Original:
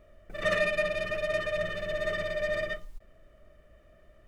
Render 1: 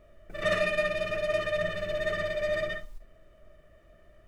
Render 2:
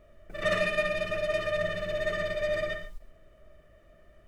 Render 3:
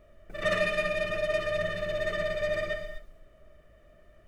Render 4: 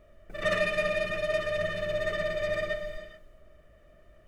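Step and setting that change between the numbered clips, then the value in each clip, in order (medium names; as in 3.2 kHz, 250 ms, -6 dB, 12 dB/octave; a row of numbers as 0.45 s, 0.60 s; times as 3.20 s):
gated-style reverb, gate: 90 ms, 160 ms, 280 ms, 460 ms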